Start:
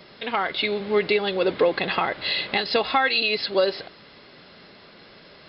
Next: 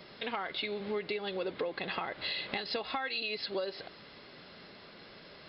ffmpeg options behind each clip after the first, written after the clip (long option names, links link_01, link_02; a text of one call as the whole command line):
ffmpeg -i in.wav -af "acompressor=threshold=-30dB:ratio=4,volume=-4dB" out.wav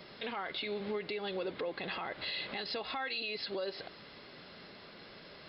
ffmpeg -i in.wav -af "alimiter=level_in=5dB:limit=-24dB:level=0:latency=1:release=14,volume=-5dB" out.wav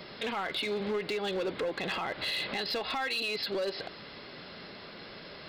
ffmpeg -i in.wav -af "volume=33.5dB,asoftclip=hard,volume=-33.5dB,volume=6dB" out.wav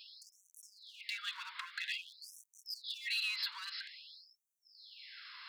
ffmpeg -i in.wav -af "afftfilt=real='re*gte(b*sr/1024,860*pow(5900/860,0.5+0.5*sin(2*PI*0.5*pts/sr)))':imag='im*gte(b*sr/1024,860*pow(5900/860,0.5+0.5*sin(2*PI*0.5*pts/sr)))':win_size=1024:overlap=0.75,volume=-2.5dB" out.wav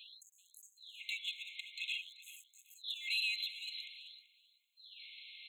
ffmpeg -i in.wav -af "aeval=exprs='0.0422*(cos(1*acos(clip(val(0)/0.0422,-1,1)))-cos(1*PI/2))+0.00133*(cos(5*acos(clip(val(0)/0.0422,-1,1)))-cos(5*PI/2))':channel_layout=same,aecho=1:1:384|768:0.141|0.0268,afftfilt=real='re*eq(mod(floor(b*sr/1024/2100),2),1)':imag='im*eq(mod(floor(b*sr/1024/2100),2),1)':win_size=1024:overlap=0.75,volume=1dB" out.wav